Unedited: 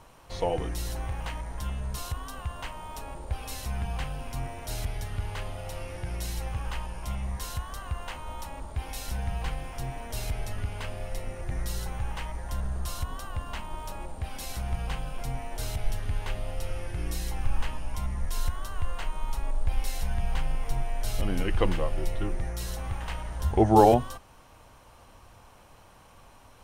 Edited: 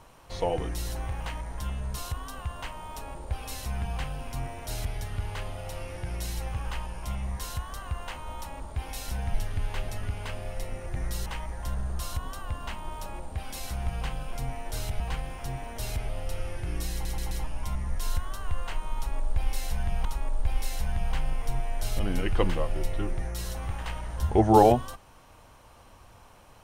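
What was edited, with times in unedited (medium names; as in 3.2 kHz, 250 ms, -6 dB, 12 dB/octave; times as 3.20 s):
9.34–10.43 s: swap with 15.86–16.40 s
11.81–12.12 s: delete
17.23 s: stutter in place 0.13 s, 4 plays
19.27–20.36 s: loop, 2 plays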